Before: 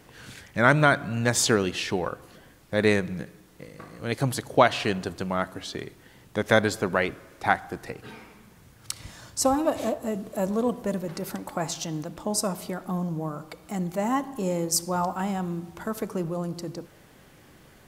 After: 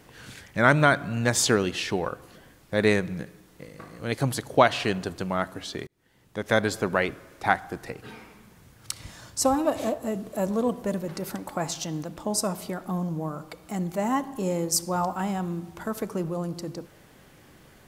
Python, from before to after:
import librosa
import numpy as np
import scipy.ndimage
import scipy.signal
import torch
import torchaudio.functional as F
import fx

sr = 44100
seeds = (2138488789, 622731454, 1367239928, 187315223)

y = fx.edit(x, sr, fx.fade_in_span(start_s=5.87, length_s=0.91), tone=tone)